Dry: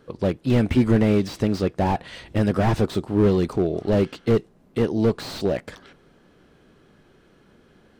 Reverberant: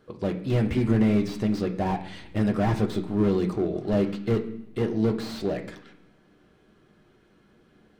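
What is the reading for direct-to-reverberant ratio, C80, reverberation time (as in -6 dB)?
3.5 dB, 14.0 dB, 0.70 s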